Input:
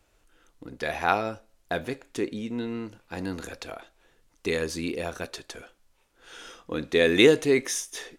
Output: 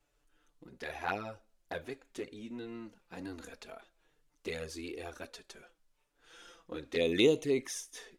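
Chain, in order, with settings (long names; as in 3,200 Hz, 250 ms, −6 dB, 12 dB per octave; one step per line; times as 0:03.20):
flanger swept by the level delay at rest 7 ms, full sweep at −17 dBFS
level −7.5 dB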